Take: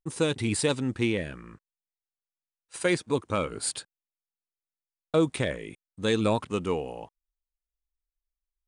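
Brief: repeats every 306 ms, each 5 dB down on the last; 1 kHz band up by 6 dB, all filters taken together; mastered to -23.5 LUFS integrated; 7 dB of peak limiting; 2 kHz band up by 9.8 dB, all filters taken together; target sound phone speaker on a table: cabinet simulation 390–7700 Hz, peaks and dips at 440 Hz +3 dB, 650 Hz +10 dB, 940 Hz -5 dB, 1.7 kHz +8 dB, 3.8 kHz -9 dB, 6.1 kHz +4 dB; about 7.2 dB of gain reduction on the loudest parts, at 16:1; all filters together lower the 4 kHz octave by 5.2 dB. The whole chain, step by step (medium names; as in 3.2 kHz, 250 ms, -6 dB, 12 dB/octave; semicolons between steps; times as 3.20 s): peaking EQ 1 kHz +5.5 dB; peaking EQ 2 kHz +6.5 dB; peaking EQ 4 kHz -4.5 dB; compression 16:1, threshold -24 dBFS; peak limiter -19.5 dBFS; cabinet simulation 390–7700 Hz, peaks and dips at 440 Hz +3 dB, 650 Hz +10 dB, 940 Hz -5 dB, 1.7 kHz +8 dB, 3.8 kHz -9 dB, 6.1 kHz +4 dB; feedback delay 306 ms, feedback 56%, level -5 dB; trim +8.5 dB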